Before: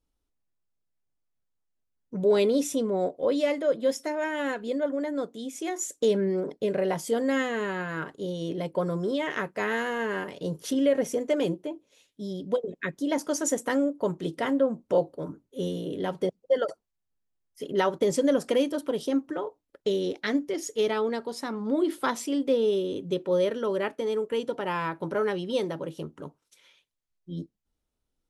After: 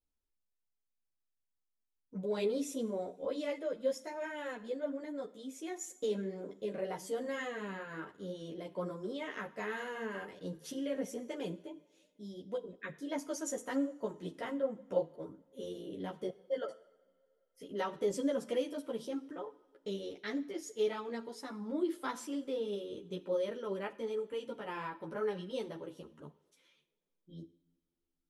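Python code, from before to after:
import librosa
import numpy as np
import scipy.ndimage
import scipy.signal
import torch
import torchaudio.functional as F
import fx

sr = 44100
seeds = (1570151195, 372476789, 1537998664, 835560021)

y = fx.rev_double_slope(x, sr, seeds[0], early_s=0.72, late_s=2.8, knee_db=-19, drr_db=14.0)
y = fx.ensemble(y, sr)
y = y * librosa.db_to_amplitude(-8.0)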